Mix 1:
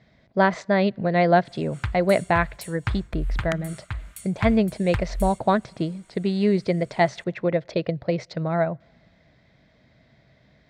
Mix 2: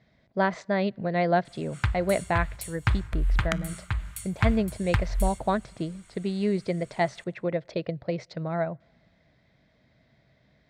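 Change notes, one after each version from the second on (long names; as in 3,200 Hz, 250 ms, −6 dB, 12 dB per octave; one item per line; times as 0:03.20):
speech −5.5 dB
background: send +11.0 dB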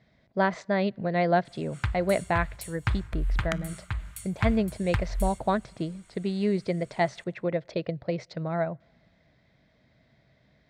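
background −3.0 dB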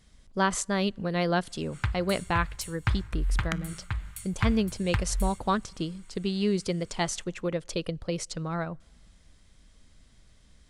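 speech: remove loudspeaker in its box 120–3,900 Hz, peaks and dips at 130 Hz +8 dB, 650 Hz +10 dB, 1,200 Hz −6 dB, 2,000 Hz +5 dB, 3,000 Hz −10 dB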